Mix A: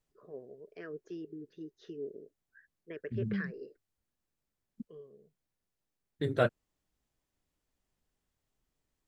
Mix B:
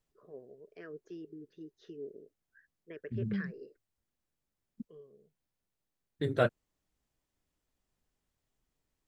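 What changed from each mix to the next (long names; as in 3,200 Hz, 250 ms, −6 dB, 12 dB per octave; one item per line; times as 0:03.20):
first voice −3.0 dB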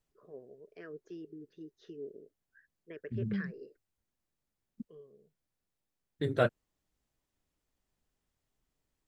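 nothing changed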